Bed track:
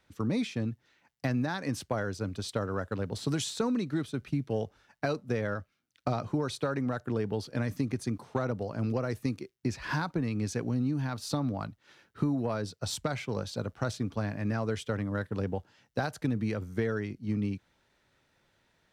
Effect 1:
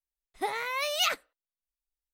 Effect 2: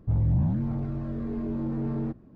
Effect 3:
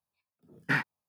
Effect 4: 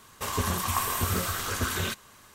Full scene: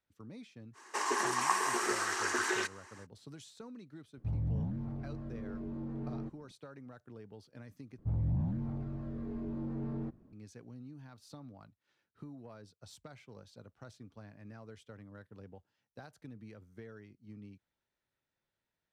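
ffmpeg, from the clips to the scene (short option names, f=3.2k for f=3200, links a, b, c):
-filter_complex "[2:a]asplit=2[a][b];[0:a]volume=-19.5dB[c];[4:a]highpass=f=310:w=0.5412,highpass=f=310:w=1.3066,equalizer=f=360:t=q:w=4:g=10,equalizer=f=540:t=q:w=4:g=-6,equalizer=f=870:t=q:w=4:g=8,equalizer=f=1.8k:t=q:w=4:g=9,equalizer=f=3.5k:t=q:w=4:g=-8,equalizer=f=5.7k:t=q:w=4:g=4,lowpass=f=8.9k:w=0.5412,lowpass=f=8.9k:w=1.3066[d];[c]asplit=2[e][f];[e]atrim=end=7.984[g];[b]atrim=end=2.35,asetpts=PTS-STARTPTS,volume=-8.5dB[h];[f]atrim=start=10.326[i];[d]atrim=end=2.34,asetpts=PTS-STARTPTS,volume=-4dB,afade=t=in:d=0.05,afade=t=out:st=2.29:d=0.05,adelay=730[j];[a]atrim=end=2.35,asetpts=PTS-STARTPTS,volume=-10.5dB,afade=t=in:d=0.004:c=hsin,afade=t=out:st=2.346:d=0.004:c=hsin,adelay=183897S[k];[g][h]acrossfade=d=0.004:c1=hsin:c2=hsin[l];[l][i]acrossfade=d=0.004:c1=hsin:c2=hsin[m];[m][j][k]amix=inputs=3:normalize=0"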